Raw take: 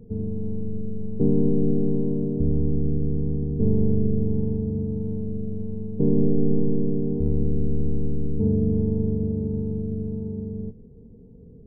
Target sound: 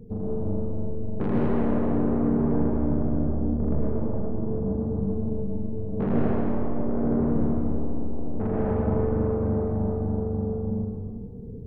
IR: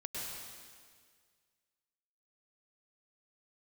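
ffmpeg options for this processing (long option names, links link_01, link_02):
-filter_complex "[0:a]asettb=1/sr,asplit=3[link_01][link_02][link_03];[link_01]atrim=end=3.244[link_04];[link_02]atrim=start=3.24:end=5.77,asetpts=PTS-STARTPTS,afade=type=in:duration=0.004:curve=qsin,afade=type=out:start_time=2.526:duration=0.004:curve=qsin,flanger=delay=15:depth=2.6:speed=2.4[link_05];[link_03]atrim=start=5.766[link_06];[link_04][link_05]acrossfade=duration=0.004:curve1=hsin:curve2=qsin[link_07];[link_07][link_06]acrossfade=duration=0.004:curve1=qsin:curve2=hsin,asoftclip=type=tanh:threshold=-26dB[link_08];[1:a]atrim=start_sample=2205[link_09];[link_08][link_09]afir=irnorm=-1:irlink=0,volume=6dB"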